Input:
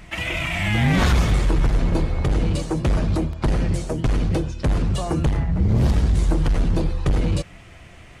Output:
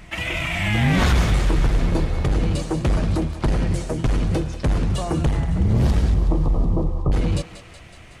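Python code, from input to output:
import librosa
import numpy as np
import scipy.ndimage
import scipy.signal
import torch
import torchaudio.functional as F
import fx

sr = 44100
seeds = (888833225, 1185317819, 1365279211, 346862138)

y = fx.brickwall_lowpass(x, sr, high_hz=1300.0, at=(6.14, 7.12))
y = fx.echo_thinned(y, sr, ms=186, feedback_pct=70, hz=670.0, wet_db=-11.0)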